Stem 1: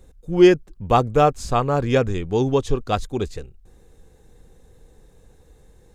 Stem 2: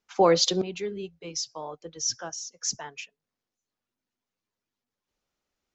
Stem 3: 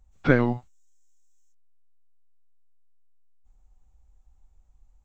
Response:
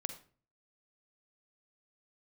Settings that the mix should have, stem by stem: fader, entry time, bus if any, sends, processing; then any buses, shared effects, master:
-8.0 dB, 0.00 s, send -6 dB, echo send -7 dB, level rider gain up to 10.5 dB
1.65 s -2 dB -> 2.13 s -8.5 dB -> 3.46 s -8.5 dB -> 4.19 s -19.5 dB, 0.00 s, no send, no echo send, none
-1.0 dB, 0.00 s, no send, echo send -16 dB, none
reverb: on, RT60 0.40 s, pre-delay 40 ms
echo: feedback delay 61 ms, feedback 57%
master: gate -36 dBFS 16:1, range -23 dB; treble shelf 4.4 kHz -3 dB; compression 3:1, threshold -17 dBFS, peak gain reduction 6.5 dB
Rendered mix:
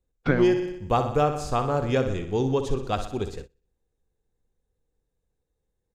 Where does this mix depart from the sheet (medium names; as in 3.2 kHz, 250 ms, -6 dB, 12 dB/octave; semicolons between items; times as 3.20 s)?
stem 1: missing level rider gain up to 10.5 dB; stem 2: muted; master: missing treble shelf 4.4 kHz -3 dB